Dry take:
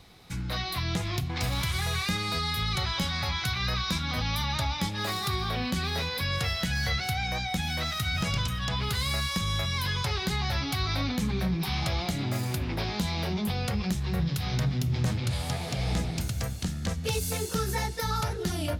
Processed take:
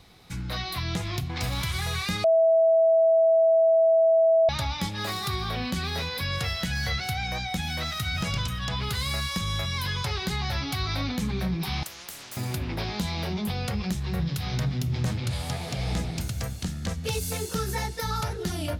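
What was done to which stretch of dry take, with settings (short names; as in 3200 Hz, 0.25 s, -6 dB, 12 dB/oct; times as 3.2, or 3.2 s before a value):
2.24–4.49 bleep 654 Hz -16 dBFS
11.83–12.37 spectral compressor 10:1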